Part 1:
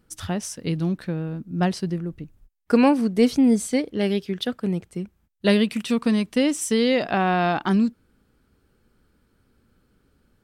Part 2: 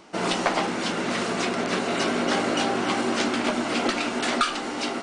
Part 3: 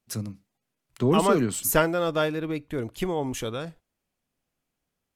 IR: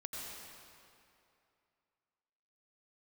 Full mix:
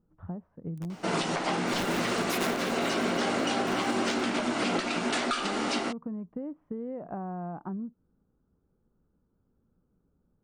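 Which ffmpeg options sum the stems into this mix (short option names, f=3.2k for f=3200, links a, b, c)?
-filter_complex "[0:a]lowpass=f=1.1k:w=0.5412,lowpass=f=1.1k:w=1.3066,equalizer=f=170:w=4.3:g=7,acompressor=threshold=-24dB:ratio=6,volume=-9.5dB,asplit=2[a][b];[1:a]adelay=900,volume=-1dB,asplit=2[c][d];[d]volume=-8.5dB[e];[2:a]highpass=f=62:w=0.5412,highpass=f=62:w=1.3066,acrusher=bits=3:mix=0:aa=0.000001,aeval=exprs='0.0944*(abs(mod(val(0)/0.0944+3,4)-2)-1)':c=same,adelay=650,volume=-2.5dB,asplit=2[f][g];[g]volume=-8.5dB[h];[b]apad=whole_len=256042[i];[f][i]sidechaincompress=threshold=-41dB:ratio=8:attack=16:release=274[j];[3:a]atrim=start_sample=2205[k];[e][h]amix=inputs=2:normalize=0[l];[l][k]afir=irnorm=-1:irlink=0[m];[a][c][j][m]amix=inputs=4:normalize=0,alimiter=limit=-18.5dB:level=0:latency=1:release=248"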